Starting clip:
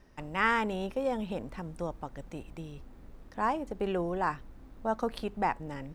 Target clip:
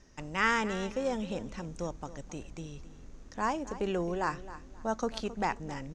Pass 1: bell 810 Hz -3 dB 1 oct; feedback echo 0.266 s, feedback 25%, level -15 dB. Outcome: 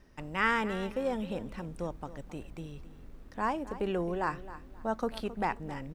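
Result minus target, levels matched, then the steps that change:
8000 Hz band -9.5 dB
add first: synth low-pass 6500 Hz, resonance Q 5.7

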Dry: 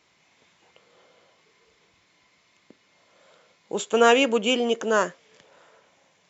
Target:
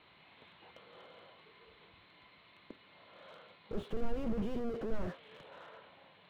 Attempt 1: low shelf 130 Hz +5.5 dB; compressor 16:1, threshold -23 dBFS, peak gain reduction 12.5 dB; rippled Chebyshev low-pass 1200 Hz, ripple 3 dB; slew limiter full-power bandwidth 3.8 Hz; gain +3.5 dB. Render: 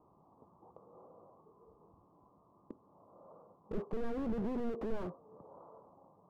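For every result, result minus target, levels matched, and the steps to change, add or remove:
4000 Hz band -13.0 dB; compressor: peak gain reduction +12.5 dB
change: rippled Chebyshev low-pass 4200 Hz, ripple 3 dB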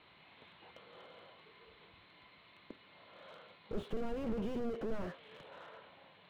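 compressor: peak gain reduction +12.5 dB
remove: compressor 16:1, threshold -23 dBFS, peak gain reduction 12.5 dB

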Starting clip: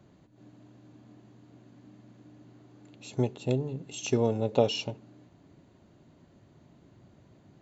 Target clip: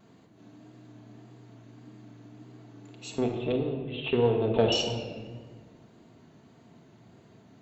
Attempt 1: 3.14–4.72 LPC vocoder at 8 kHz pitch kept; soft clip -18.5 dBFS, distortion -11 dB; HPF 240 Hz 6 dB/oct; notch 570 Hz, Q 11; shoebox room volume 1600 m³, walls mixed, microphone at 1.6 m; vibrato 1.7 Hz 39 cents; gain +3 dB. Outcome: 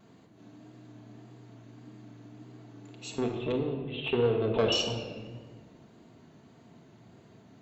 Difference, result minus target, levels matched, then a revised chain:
soft clip: distortion +10 dB
3.14–4.72 LPC vocoder at 8 kHz pitch kept; soft clip -10 dBFS, distortion -21 dB; HPF 240 Hz 6 dB/oct; notch 570 Hz, Q 11; shoebox room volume 1600 m³, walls mixed, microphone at 1.6 m; vibrato 1.7 Hz 39 cents; gain +3 dB

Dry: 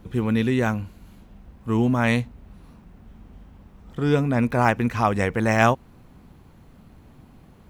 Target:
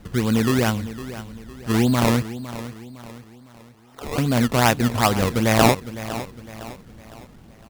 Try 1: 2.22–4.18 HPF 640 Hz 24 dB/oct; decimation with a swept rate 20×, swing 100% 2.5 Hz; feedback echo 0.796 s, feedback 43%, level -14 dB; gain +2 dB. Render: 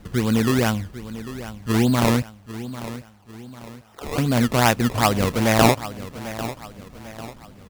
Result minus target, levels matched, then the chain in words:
echo 0.288 s late
2.22–4.18 HPF 640 Hz 24 dB/oct; decimation with a swept rate 20×, swing 100% 2.5 Hz; feedback echo 0.508 s, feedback 43%, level -14 dB; gain +2 dB

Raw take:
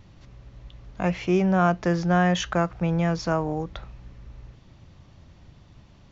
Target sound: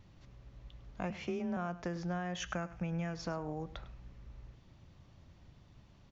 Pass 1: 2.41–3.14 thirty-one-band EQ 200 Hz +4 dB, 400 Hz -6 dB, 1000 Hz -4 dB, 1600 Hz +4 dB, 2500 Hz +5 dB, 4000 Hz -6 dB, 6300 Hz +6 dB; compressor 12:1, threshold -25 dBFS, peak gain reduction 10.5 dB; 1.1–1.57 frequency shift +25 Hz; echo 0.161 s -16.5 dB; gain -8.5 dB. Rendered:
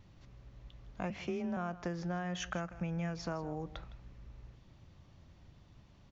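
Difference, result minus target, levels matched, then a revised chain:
echo 58 ms late
2.41–3.14 thirty-one-band EQ 200 Hz +4 dB, 400 Hz -6 dB, 1000 Hz -4 dB, 1600 Hz +4 dB, 2500 Hz +5 dB, 4000 Hz -6 dB, 6300 Hz +6 dB; compressor 12:1, threshold -25 dBFS, peak gain reduction 10.5 dB; 1.1–1.57 frequency shift +25 Hz; echo 0.103 s -16.5 dB; gain -8.5 dB

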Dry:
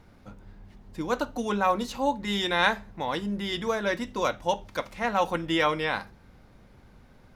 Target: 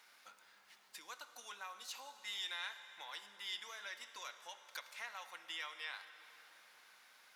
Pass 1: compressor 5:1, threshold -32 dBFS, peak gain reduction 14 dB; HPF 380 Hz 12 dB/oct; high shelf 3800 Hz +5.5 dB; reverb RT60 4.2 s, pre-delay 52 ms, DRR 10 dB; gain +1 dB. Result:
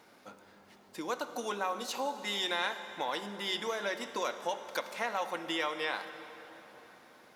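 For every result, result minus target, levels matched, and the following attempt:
500 Hz band +13.5 dB; compressor: peak gain reduction -8 dB
compressor 5:1, threshold -32 dBFS, peak gain reduction 14 dB; HPF 1500 Hz 12 dB/oct; high shelf 3800 Hz +5.5 dB; reverb RT60 4.2 s, pre-delay 52 ms, DRR 10 dB; gain +1 dB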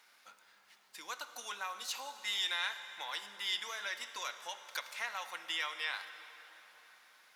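compressor: peak gain reduction -8 dB
compressor 5:1, threshold -42 dBFS, peak gain reduction 22 dB; HPF 1500 Hz 12 dB/oct; high shelf 3800 Hz +5.5 dB; reverb RT60 4.2 s, pre-delay 52 ms, DRR 10 dB; gain +1 dB

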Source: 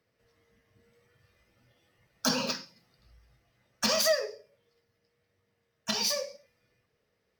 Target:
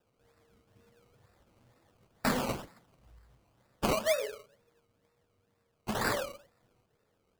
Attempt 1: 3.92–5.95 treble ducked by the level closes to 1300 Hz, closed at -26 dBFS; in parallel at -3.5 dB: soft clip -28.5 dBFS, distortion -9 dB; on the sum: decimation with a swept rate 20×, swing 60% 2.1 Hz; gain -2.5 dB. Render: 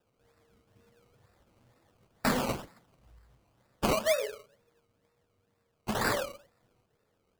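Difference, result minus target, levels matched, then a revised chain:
soft clip: distortion -6 dB
3.92–5.95 treble ducked by the level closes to 1300 Hz, closed at -26 dBFS; in parallel at -3.5 dB: soft clip -39.5 dBFS, distortion -3 dB; on the sum: decimation with a swept rate 20×, swing 60% 2.1 Hz; gain -2.5 dB

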